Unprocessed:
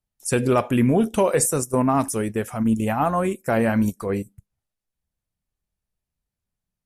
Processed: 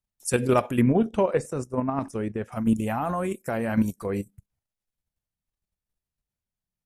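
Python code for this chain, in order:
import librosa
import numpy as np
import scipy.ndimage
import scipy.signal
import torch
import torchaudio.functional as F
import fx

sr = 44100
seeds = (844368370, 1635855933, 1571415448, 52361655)

y = fx.level_steps(x, sr, step_db=9)
y = fx.spacing_loss(y, sr, db_at_10k=20, at=(0.81, 2.52))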